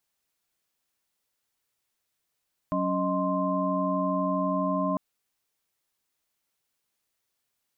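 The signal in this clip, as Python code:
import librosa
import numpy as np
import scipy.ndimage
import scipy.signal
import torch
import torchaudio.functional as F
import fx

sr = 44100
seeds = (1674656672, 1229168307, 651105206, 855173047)

y = fx.chord(sr, length_s=2.25, notes=(54, 61, 75, 84), wave='sine', level_db=-29.5)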